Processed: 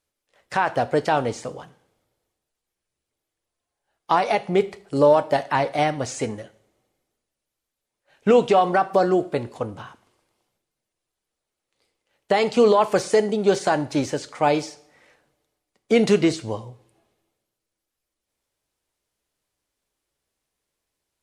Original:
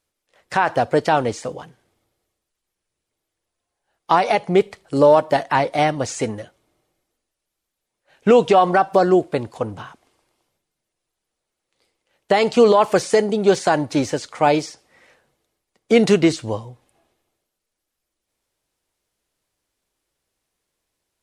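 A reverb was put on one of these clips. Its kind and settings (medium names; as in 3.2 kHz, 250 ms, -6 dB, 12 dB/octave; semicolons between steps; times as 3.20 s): two-slope reverb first 0.52 s, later 1.9 s, from -28 dB, DRR 12.5 dB; trim -3.5 dB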